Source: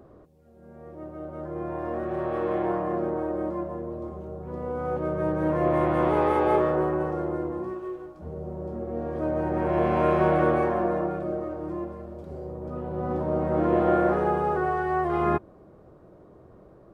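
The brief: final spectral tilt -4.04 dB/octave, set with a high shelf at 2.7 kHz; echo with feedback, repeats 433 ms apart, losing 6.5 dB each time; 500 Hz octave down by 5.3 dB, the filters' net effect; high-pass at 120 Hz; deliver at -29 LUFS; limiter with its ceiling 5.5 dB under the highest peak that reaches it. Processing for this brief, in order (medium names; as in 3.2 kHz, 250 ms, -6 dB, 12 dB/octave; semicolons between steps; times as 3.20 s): high-pass 120 Hz; peaking EQ 500 Hz -7.5 dB; treble shelf 2.7 kHz +3 dB; peak limiter -19 dBFS; feedback delay 433 ms, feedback 47%, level -6.5 dB; trim +1.5 dB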